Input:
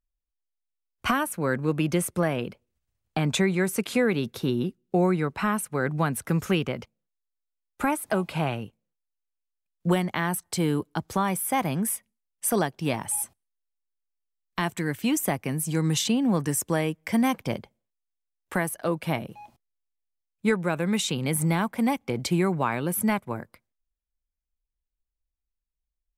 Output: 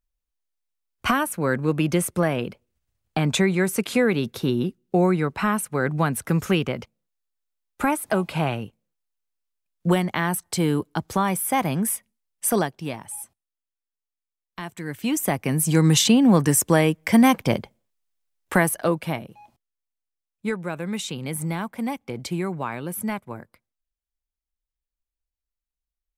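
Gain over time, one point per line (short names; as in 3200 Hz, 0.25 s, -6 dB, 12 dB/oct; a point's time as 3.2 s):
12.56 s +3 dB
13.04 s -7 dB
14.71 s -7 dB
15.02 s -0.5 dB
15.67 s +7.5 dB
18.76 s +7.5 dB
19.28 s -3.5 dB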